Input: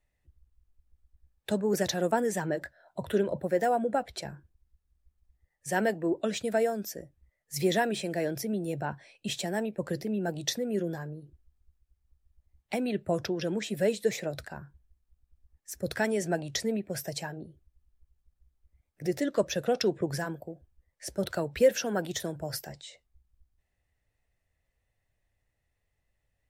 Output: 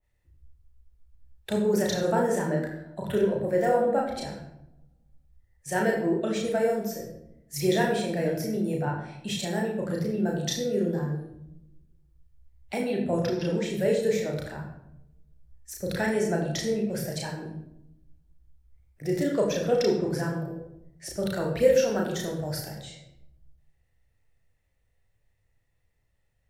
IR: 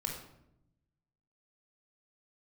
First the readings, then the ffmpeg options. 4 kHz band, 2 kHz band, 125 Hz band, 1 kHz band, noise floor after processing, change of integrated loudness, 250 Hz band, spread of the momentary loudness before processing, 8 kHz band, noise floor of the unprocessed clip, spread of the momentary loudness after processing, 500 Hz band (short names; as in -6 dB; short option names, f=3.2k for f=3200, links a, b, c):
+1.0 dB, +1.5 dB, +6.0 dB, +1.5 dB, -70 dBFS, +3.5 dB, +4.0 dB, 15 LU, +0.5 dB, -79 dBFS, 15 LU, +4.0 dB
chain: -filter_complex "[0:a]asplit=2[a][b];[1:a]atrim=start_sample=2205,adelay=33[c];[b][c]afir=irnorm=-1:irlink=0,volume=-0.5dB[d];[a][d]amix=inputs=2:normalize=0,adynamicequalizer=threshold=0.0126:dfrequency=1700:dqfactor=0.7:tfrequency=1700:tqfactor=0.7:attack=5:release=100:ratio=0.375:range=1.5:mode=cutabove:tftype=highshelf,volume=-1dB"